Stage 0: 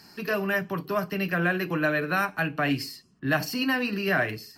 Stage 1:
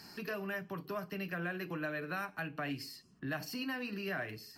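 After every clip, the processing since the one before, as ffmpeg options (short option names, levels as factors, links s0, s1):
-af "acompressor=threshold=0.00631:ratio=2,volume=0.841"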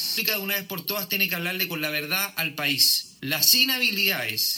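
-af "aexciter=amount=10.5:drive=3.8:freq=2400,volume=2.37"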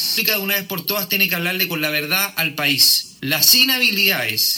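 -af "acontrast=80"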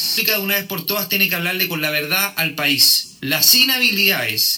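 -filter_complex "[0:a]asplit=2[s0][s1];[s1]adelay=25,volume=0.355[s2];[s0][s2]amix=inputs=2:normalize=0"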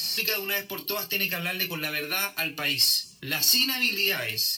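-af "flanger=delay=1.6:depth=1.4:regen=-27:speed=0.67:shape=sinusoidal,volume=0.531"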